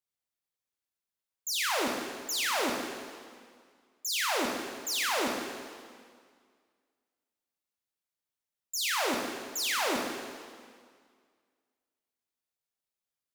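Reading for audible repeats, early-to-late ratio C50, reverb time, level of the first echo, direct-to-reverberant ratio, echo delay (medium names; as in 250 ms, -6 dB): no echo, 2.5 dB, 1.9 s, no echo, 0.5 dB, no echo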